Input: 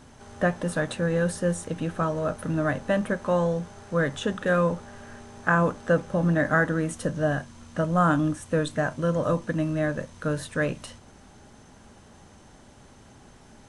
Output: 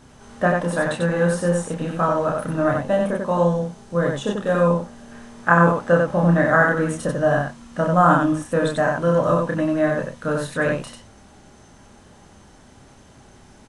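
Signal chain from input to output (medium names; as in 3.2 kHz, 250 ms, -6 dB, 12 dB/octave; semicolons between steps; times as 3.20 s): 2.68–5.12 s: peaking EQ 1.6 kHz -7 dB 1.6 oct; loudspeakers at several distances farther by 10 m -3 dB, 32 m -3 dB; dynamic bell 900 Hz, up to +7 dB, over -36 dBFS, Q 0.87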